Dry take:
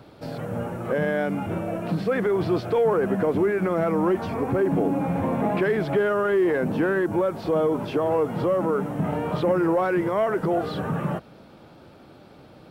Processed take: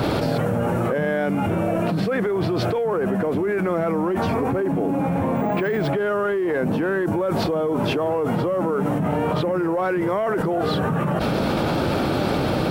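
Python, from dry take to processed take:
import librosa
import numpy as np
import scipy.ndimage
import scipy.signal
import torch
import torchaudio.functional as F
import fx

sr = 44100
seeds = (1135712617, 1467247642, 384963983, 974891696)

y = fx.resample_bad(x, sr, factor=2, down='none', up='hold', at=(5.36, 5.88))
y = fx.env_flatten(y, sr, amount_pct=100)
y = F.gain(torch.from_numpy(y), -3.5).numpy()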